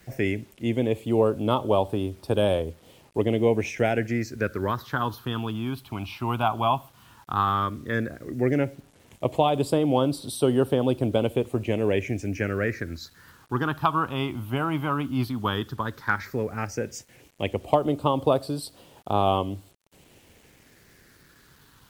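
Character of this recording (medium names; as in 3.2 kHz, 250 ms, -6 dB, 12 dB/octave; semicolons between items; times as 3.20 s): phasing stages 6, 0.12 Hz, lowest notch 480–1900 Hz; a quantiser's noise floor 10-bit, dither none; MP3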